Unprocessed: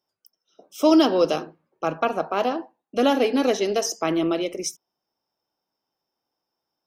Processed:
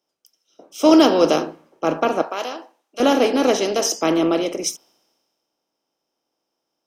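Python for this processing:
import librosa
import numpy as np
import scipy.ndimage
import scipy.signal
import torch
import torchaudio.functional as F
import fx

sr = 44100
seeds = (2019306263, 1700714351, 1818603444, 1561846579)

y = fx.bin_compress(x, sr, power=0.6)
y = fx.highpass(y, sr, hz=990.0, slope=6, at=(2.22, 3.0))
y = fx.band_widen(y, sr, depth_pct=70)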